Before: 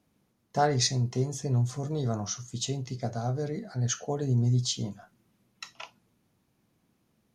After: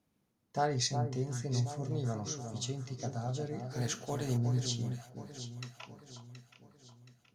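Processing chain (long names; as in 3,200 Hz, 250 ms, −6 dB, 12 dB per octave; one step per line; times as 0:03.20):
0:03.70–0:04.36: compressing power law on the bin magnitudes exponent 0.64
on a send: delay that swaps between a low-pass and a high-pass 362 ms, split 1,300 Hz, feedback 67%, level −7 dB
on the sum: level −6.5 dB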